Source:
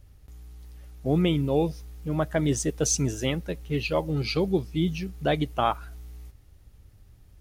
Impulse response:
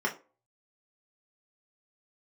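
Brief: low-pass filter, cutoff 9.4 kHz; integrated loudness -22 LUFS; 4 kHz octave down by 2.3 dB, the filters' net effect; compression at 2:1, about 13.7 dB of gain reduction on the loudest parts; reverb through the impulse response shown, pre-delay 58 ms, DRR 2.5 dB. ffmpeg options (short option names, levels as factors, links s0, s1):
-filter_complex "[0:a]lowpass=9400,equalizer=f=4000:t=o:g=-3,acompressor=threshold=0.00562:ratio=2,asplit=2[s0][s1];[1:a]atrim=start_sample=2205,adelay=58[s2];[s1][s2]afir=irnorm=-1:irlink=0,volume=0.266[s3];[s0][s3]amix=inputs=2:normalize=0,volume=6.31"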